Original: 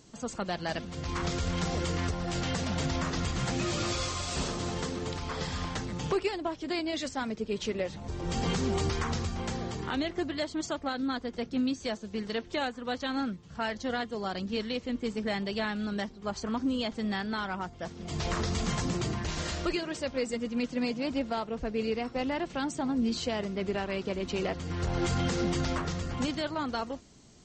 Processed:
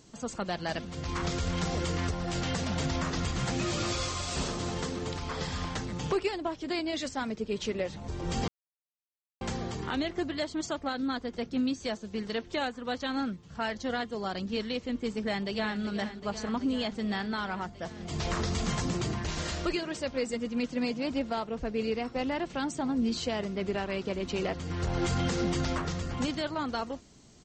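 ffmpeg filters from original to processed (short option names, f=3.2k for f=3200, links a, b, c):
-filter_complex "[0:a]asplit=2[a][b];[b]afade=t=in:st=15.09:d=0.01,afade=t=out:st=15.81:d=0.01,aecho=0:1:380|760|1140|1520|1900|2280|2660|3040|3420|3800|4180|4560:0.266073|0.212858|0.170286|0.136229|0.108983|0.0871866|0.0697493|0.0557994|0.0446396|0.0357116|0.0285693|0.0228555[c];[a][c]amix=inputs=2:normalize=0,asplit=3[d][e][f];[d]atrim=end=8.48,asetpts=PTS-STARTPTS,afade=t=out:st=8.476:d=0.004:c=hsin[g];[e]atrim=start=8.48:end=9.41,asetpts=PTS-STARTPTS,volume=0[h];[f]atrim=start=9.41,asetpts=PTS-STARTPTS,afade=t=in:d=0.004:c=hsin[i];[g][h][i]concat=n=3:v=0:a=1"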